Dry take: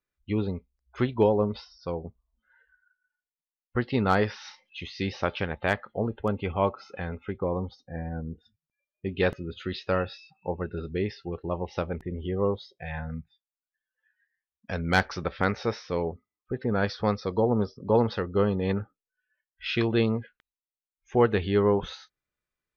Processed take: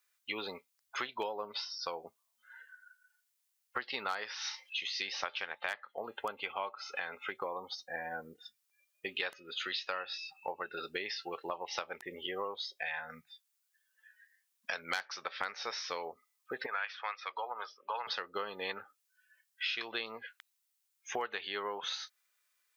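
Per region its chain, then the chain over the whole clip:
16.66–18.07 s: high-pass 980 Hz + resonant high shelf 3.5 kHz -9 dB, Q 3
whole clip: high-pass 960 Hz 12 dB/octave; treble shelf 4.1 kHz +8.5 dB; compression 6:1, threshold -44 dBFS; trim +9 dB

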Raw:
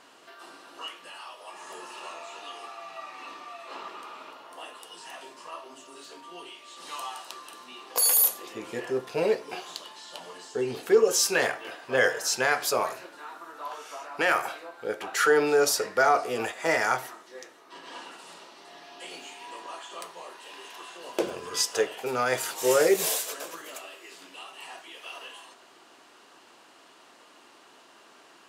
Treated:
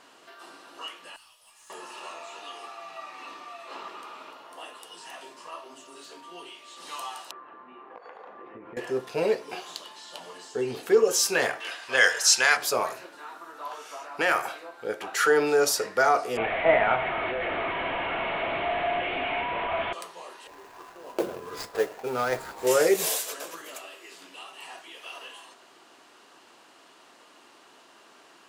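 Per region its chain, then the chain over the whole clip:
1.16–1.70 s: differentiator + valve stage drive 47 dB, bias 0.35
7.31–8.77 s: low-pass 1.8 kHz 24 dB/octave + compression 12:1, threshold -40 dBFS
11.60–12.57 s: low-pass 10 kHz + tilt shelf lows -9.5 dB, about 880 Hz
16.37–19.93 s: one-bit delta coder 16 kbps, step -25.5 dBFS + small resonant body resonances 670/2200 Hz, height 11 dB, ringing for 30 ms
20.47–22.67 s: median filter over 15 samples + modulation noise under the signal 23 dB
whole clip: none

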